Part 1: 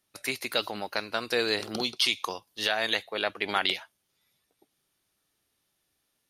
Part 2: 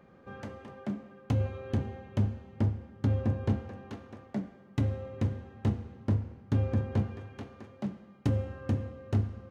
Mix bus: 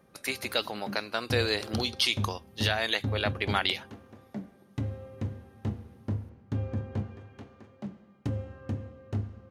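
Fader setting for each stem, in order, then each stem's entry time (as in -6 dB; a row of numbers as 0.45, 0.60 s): -1.0, -4.0 dB; 0.00, 0.00 s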